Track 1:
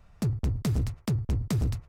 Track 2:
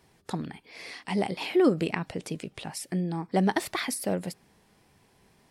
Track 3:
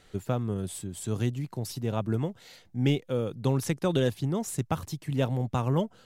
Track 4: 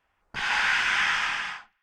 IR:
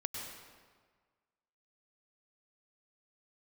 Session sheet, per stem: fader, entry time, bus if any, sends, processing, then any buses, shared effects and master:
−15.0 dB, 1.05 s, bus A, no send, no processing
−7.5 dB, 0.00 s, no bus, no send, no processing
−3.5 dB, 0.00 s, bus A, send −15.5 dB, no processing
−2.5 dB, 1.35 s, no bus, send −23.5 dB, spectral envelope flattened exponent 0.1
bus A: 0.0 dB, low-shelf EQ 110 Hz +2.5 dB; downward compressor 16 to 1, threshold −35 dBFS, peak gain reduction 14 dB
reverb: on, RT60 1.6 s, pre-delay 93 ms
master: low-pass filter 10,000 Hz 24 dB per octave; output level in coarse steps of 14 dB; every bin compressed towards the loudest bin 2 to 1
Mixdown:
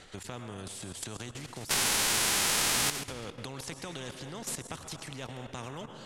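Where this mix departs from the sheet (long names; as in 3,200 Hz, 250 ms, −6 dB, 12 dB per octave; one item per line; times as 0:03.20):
stem 1: entry 1.05 s → 1.50 s
stem 2: muted
stem 4 −2.5 dB → +9.0 dB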